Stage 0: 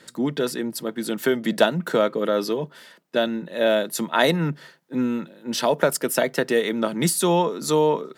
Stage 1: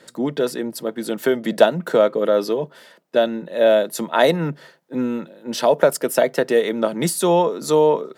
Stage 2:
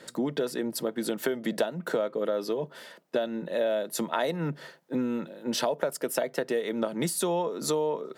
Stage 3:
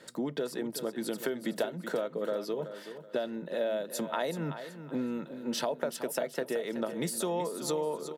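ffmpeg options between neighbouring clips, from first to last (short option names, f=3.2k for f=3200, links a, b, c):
-af "equalizer=f=580:w=1.1:g=7,volume=-1dB"
-af "acompressor=threshold=-26dB:ratio=5"
-af "aecho=1:1:377|754|1131:0.282|0.0874|0.0271,volume=-4.5dB"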